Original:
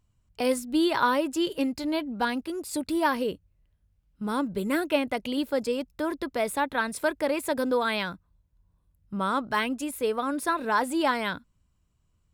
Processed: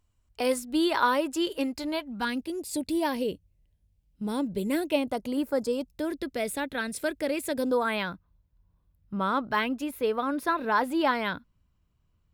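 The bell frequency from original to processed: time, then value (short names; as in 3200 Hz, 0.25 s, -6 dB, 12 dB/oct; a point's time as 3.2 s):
bell -12.5 dB 0.83 oct
1.83 s 150 Hz
2.45 s 1300 Hz
4.9 s 1300 Hz
5.41 s 4000 Hz
6.1 s 1000 Hz
7.54 s 1000 Hz
8.06 s 8300 Hz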